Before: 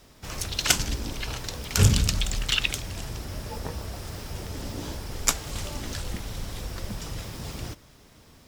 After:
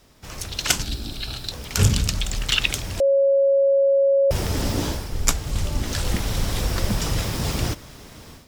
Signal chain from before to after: 5.12–5.83 s: bass shelf 220 Hz +9.5 dB; level rider gain up to 12.5 dB; 0.83–1.52 s: graphic EQ with 31 bands 500 Hz -10 dB, 1 kHz -11 dB, 2 kHz -8 dB, 4 kHz +11 dB, 6.3 kHz -7 dB; 3.00–4.31 s: bleep 551 Hz -13 dBFS; trim -1 dB

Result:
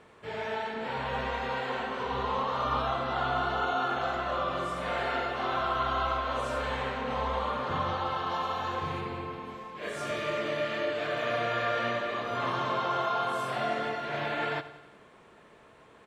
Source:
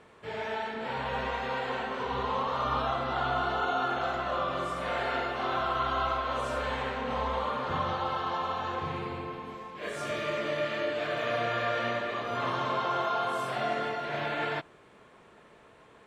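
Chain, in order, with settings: 8.30–9.01 s: treble shelf 6.3 kHz +7.5 dB; on a send: feedback delay 90 ms, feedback 59%, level -15.5 dB

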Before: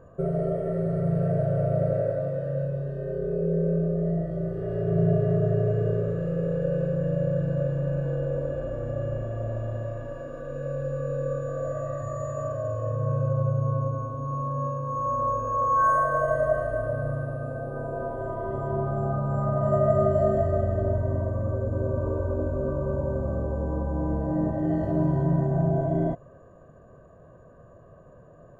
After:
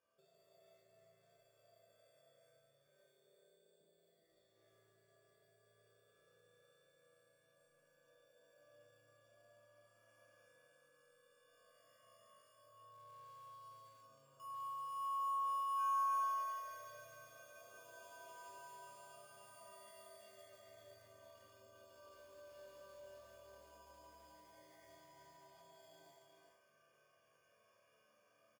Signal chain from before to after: 2.87–3.81 s: high-pass 190 Hz 12 dB/octave; 13.68–14.40 s: band-stop 1.1 kHz, Q 29; compression 5:1, threshold -32 dBFS, peak gain reduction 14.5 dB; band-pass sweep 4.3 kHz -> 2 kHz, 12.62–13.78 s; sample-and-hold 11×; chord resonator D2 sus4, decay 0.8 s; delay 381 ms -5.5 dB; bit-crushed delay 142 ms, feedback 35%, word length 12-bit, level -8.5 dB; trim +9.5 dB

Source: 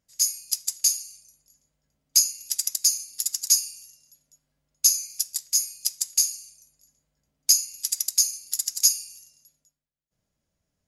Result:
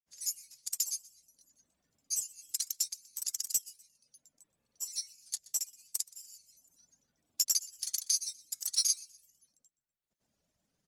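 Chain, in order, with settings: reverb removal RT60 0.73 s; hum notches 50/100/150 Hz; granulator, grains 20 per s, pitch spread up and down by 3 st; on a send: frequency-shifting echo 123 ms, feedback 33%, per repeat +52 Hz, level -23.5 dB; on the sum: three bands compressed up and down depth 40%; trim -7 dB

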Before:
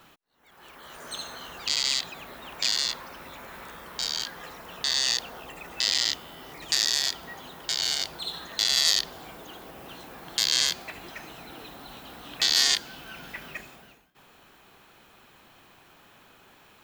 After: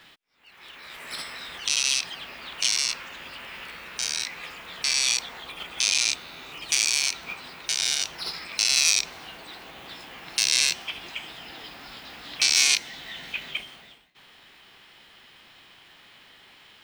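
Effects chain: peaking EQ 2.2 kHz +11.5 dB 1.1 oct; formant shift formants +4 st; trim -2 dB

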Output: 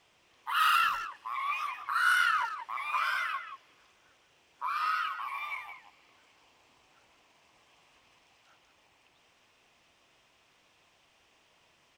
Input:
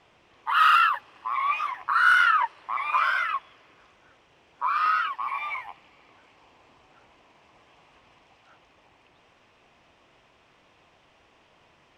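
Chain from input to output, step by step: pre-emphasis filter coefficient 0.8; speakerphone echo 180 ms, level -9 dB; trim +4 dB

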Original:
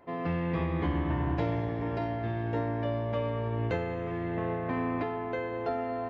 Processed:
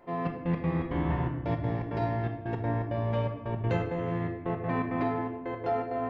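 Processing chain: trance gate "xxx..x.xx.x" 165 bpm -60 dB; simulated room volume 490 m³, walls mixed, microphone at 0.94 m

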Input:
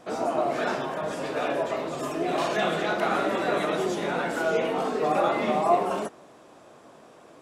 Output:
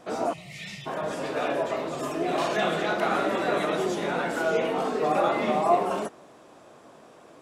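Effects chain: time-frequency box 0.33–0.86 s, 210–1800 Hz -27 dB

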